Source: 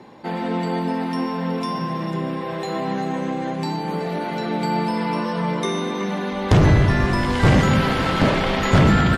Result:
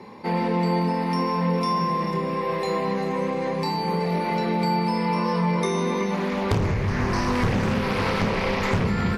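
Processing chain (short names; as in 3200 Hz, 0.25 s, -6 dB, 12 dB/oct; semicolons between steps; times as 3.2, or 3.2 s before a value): ripple EQ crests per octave 0.87, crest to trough 8 dB; compressor 10:1, threshold -20 dBFS, peak gain reduction 11.5 dB; flutter echo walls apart 4.9 m, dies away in 0.21 s; 6.14–8.85 Doppler distortion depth 0.45 ms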